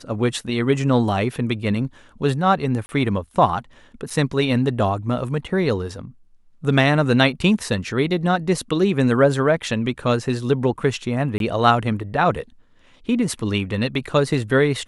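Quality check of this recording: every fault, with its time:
0:02.86–0:02.89: drop-out 30 ms
0:04.10: drop-out 4.8 ms
0:11.38–0:11.40: drop-out 22 ms

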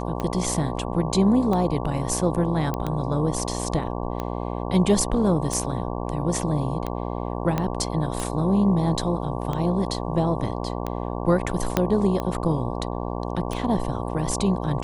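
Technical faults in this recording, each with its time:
mains buzz 60 Hz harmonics 19 −29 dBFS
scratch tick 45 rpm −15 dBFS
0:02.74: click −14 dBFS
0:07.58: click −11 dBFS
0:11.77: click −5 dBFS

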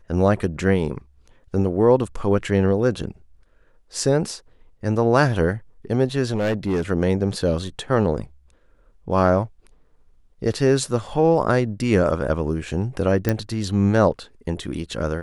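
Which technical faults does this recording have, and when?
0:06.35–0:06.82: clipping −17.5 dBFS
0:13.29: click −7 dBFS

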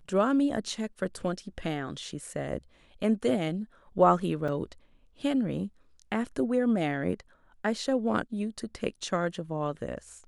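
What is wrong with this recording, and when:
0:04.48: drop-out 4.7 ms

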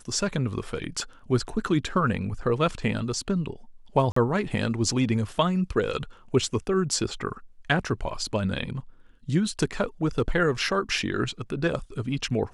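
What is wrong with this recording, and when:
0:04.12–0:04.16: drop-out 44 ms

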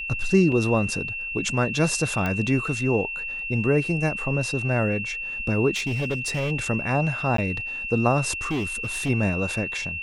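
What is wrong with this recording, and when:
whistle 2,700 Hz −29 dBFS
0:00.52: drop-out 2.8 ms
0:02.26: click −14 dBFS
0:05.75–0:06.52: clipping −21.5 dBFS
0:07.37–0:07.38: drop-out 13 ms
0:08.49–0:09.10: clipping −22.5 dBFS

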